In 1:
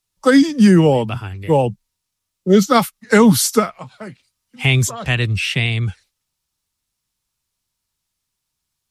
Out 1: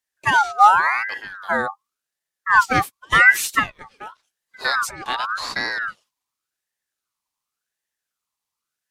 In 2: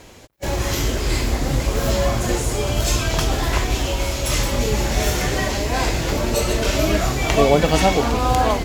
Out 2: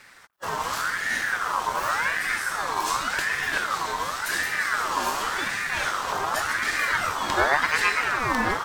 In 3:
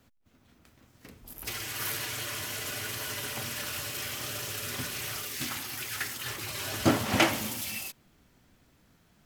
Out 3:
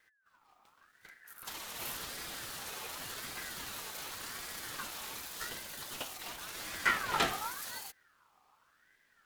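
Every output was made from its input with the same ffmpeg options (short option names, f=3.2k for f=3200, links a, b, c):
-af "equalizer=f=220:t=o:w=0.32:g=8,aeval=exprs='val(0)*sin(2*PI*1400*n/s+1400*0.3/0.89*sin(2*PI*0.89*n/s))':c=same,volume=-4.5dB"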